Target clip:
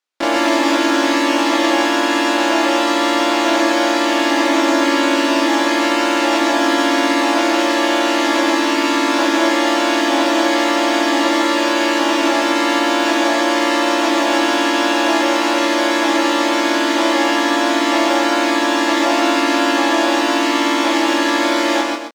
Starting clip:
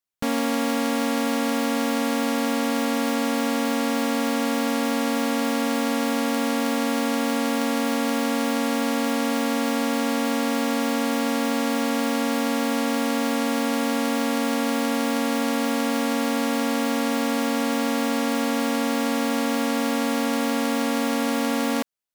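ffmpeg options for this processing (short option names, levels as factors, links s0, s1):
-filter_complex "[0:a]asplit=3[s0][s1][s2];[s1]asetrate=52444,aresample=44100,atempo=0.840896,volume=1[s3];[s2]asetrate=55563,aresample=44100,atempo=0.793701,volume=1[s4];[s0][s3][s4]amix=inputs=3:normalize=0,acrossover=split=290 6800:gain=0.0891 1 0.126[s5][s6][s7];[s5][s6][s7]amix=inputs=3:normalize=0,asplit=2[s8][s9];[s9]adelay=24,volume=0.501[s10];[s8][s10]amix=inputs=2:normalize=0,aecho=1:1:134.1|259.5:0.708|0.282,volume=1.58"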